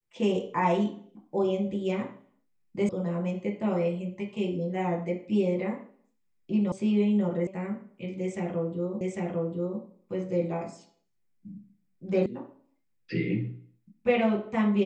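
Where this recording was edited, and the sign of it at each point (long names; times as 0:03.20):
0:02.89: cut off before it has died away
0:06.72: cut off before it has died away
0:07.47: cut off before it has died away
0:09.01: the same again, the last 0.8 s
0:12.26: cut off before it has died away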